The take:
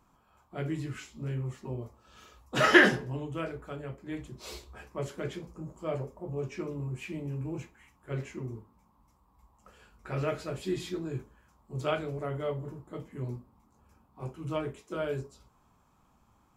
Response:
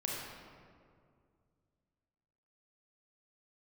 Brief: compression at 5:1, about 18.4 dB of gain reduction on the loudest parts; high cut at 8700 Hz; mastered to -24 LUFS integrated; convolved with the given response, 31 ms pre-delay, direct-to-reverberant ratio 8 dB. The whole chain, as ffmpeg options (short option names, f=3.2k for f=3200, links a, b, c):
-filter_complex "[0:a]lowpass=8.7k,acompressor=threshold=-35dB:ratio=5,asplit=2[a][b];[1:a]atrim=start_sample=2205,adelay=31[c];[b][c]afir=irnorm=-1:irlink=0,volume=-11.5dB[d];[a][d]amix=inputs=2:normalize=0,volume=16dB"